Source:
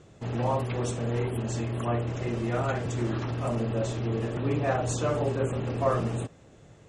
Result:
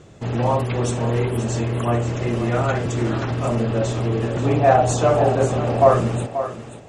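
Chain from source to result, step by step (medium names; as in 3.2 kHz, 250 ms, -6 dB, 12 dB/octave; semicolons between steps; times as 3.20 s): 4.45–5.94 s: peaking EQ 720 Hz +9.5 dB 0.53 oct; thinning echo 533 ms, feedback 27%, high-pass 240 Hz, level -10 dB; trim +7.5 dB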